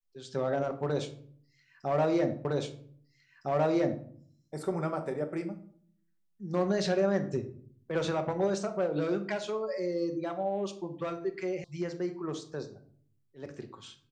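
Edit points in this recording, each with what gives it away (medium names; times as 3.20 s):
2.45 s: repeat of the last 1.61 s
11.64 s: sound stops dead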